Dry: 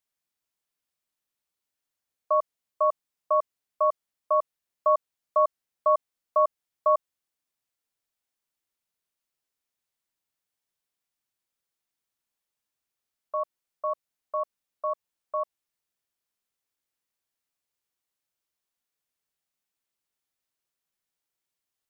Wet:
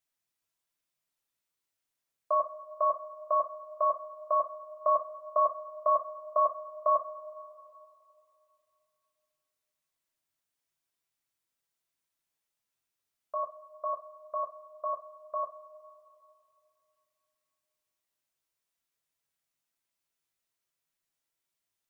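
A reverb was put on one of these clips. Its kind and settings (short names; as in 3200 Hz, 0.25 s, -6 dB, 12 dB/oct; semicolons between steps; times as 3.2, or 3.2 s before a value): two-slope reverb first 0.23 s, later 2.8 s, from -22 dB, DRR 1 dB; gain -2.5 dB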